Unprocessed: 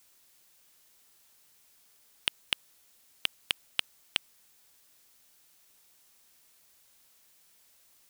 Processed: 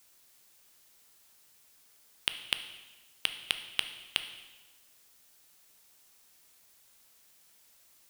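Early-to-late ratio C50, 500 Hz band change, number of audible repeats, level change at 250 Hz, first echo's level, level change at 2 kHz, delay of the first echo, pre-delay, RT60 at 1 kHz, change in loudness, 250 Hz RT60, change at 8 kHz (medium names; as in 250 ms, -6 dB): 10.5 dB, +0.5 dB, no echo, +0.5 dB, no echo, +0.5 dB, no echo, 6 ms, 1.2 s, 0.0 dB, 1.2 s, +0.5 dB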